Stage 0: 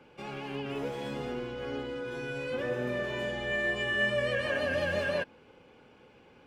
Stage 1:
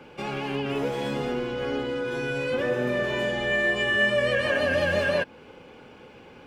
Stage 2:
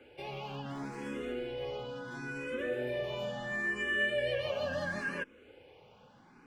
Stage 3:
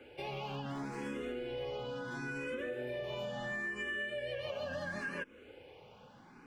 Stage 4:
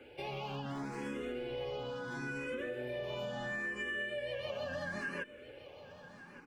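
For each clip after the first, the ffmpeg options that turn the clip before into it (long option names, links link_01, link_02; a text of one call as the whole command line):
ffmpeg -i in.wav -filter_complex "[0:a]bandreject=frequency=60:width_type=h:width=6,bandreject=frequency=120:width_type=h:width=6,asplit=2[link_01][link_02];[link_02]acompressor=threshold=-38dB:ratio=6,volume=-2dB[link_03];[link_01][link_03]amix=inputs=2:normalize=0,volume=4.5dB" out.wav
ffmpeg -i in.wav -filter_complex "[0:a]asplit=2[link_01][link_02];[link_02]afreqshift=0.73[link_03];[link_01][link_03]amix=inputs=2:normalize=1,volume=-7.5dB" out.wav
ffmpeg -i in.wav -af "acompressor=threshold=-38dB:ratio=10,volume=2dB" out.wav
ffmpeg -i in.wav -af "aecho=1:1:1167:0.168" out.wav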